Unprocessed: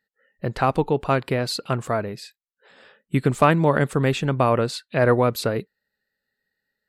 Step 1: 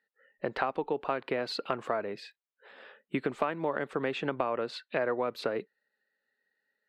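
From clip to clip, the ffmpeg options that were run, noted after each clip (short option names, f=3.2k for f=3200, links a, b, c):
-filter_complex "[0:a]acrossover=split=250 3900:gain=0.0891 1 0.0891[a][b][c];[a][b][c]amix=inputs=3:normalize=0,acompressor=threshold=-27dB:ratio=6"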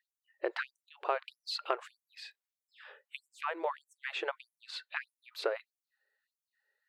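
-af "afftfilt=real='re*gte(b*sr/1024,310*pow(5800/310,0.5+0.5*sin(2*PI*1.6*pts/sr)))':imag='im*gte(b*sr/1024,310*pow(5800/310,0.5+0.5*sin(2*PI*1.6*pts/sr)))':win_size=1024:overlap=0.75"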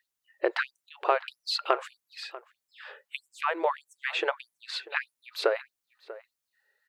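-filter_complex "[0:a]asplit=2[a][b];[b]adelay=641.4,volume=-17dB,highshelf=f=4k:g=-14.4[c];[a][c]amix=inputs=2:normalize=0,volume=7.5dB"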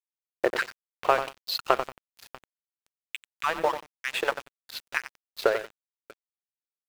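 -filter_complex "[0:a]asplit=2[a][b];[b]adelay=91,lowpass=f=1.9k:p=1,volume=-7.5dB,asplit=2[c][d];[d]adelay=91,lowpass=f=1.9k:p=1,volume=0.42,asplit=2[e][f];[f]adelay=91,lowpass=f=1.9k:p=1,volume=0.42,asplit=2[g][h];[h]adelay=91,lowpass=f=1.9k:p=1,volume=0.42,asplit=2[i][j];[j]adelay=91,lowpass=f=1.9k:p=1,volume=0.42[k];[a][c][e][g][i][k]amix=inputs=6:normalize=0,aeval=exprs='sgn(val(0))*max(abs(val(0))-0.0178,0)':c=same,acrusher=bits=7:mix=0:aa=0.5,volume=3.5dB"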